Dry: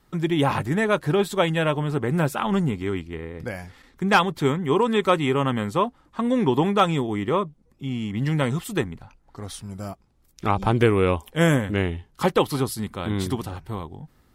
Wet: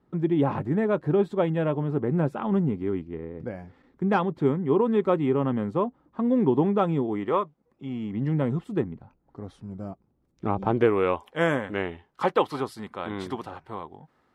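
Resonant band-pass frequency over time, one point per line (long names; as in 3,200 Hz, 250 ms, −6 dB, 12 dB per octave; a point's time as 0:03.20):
resonant band-pass, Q 0.62
0:06.98 290 Hz
0:07.45 1,100 Hz
0:08.36 270 Hz
0:10.47 270 Hz
0:11.04 900 Hz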